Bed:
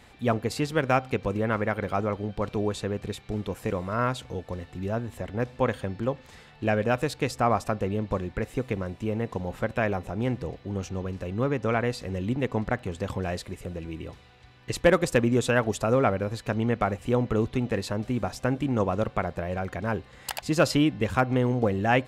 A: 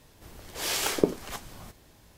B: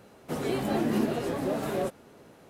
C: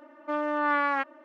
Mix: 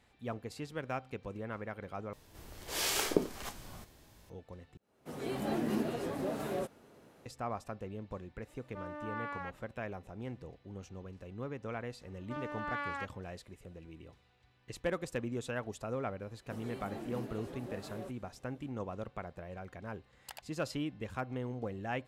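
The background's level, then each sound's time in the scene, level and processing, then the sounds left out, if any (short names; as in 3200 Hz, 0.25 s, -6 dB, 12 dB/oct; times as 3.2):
bed -15 dB
2.13 replace with A -1.5 dB + harmonic-percussive split percussive -5 dB
4.77 replace with B -6.5 dB + opening faded in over 0.65 s
8.47 add C -15.5 dB
12.02 add C -15 dB + high shelf 2600 Hz +12 dB
16.21 add B -16.5 dB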